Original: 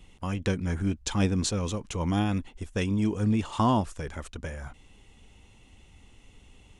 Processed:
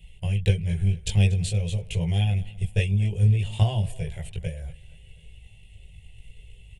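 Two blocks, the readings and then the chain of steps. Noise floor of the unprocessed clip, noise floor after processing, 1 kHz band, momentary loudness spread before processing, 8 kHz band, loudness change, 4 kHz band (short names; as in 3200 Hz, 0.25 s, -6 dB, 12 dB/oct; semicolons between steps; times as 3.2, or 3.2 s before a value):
-56 dBFS, -49 dBFS, -10.5 dB, 13 LU, -2.5 dB, +3.5 dB, +2.0 dB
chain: transient shaper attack +7 dB, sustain +2 dB; EQ curve 180 Hz 0 dB, 260 Hz -30 dB, 390 Hz -7 dB, 670 Hz -7 dB, 1200 Hz -29 dB, 1900 Hz -6 dB, 2800 Hz +2 dB, 6100 Hz -13 dB, 8700 Hz 0 dB; feedback echo 0.237 s, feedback 41%, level -20 dB; chorus voices 6, 0.4 Hz, delay 19 ms, depth 1.3 ms; gain +5 dB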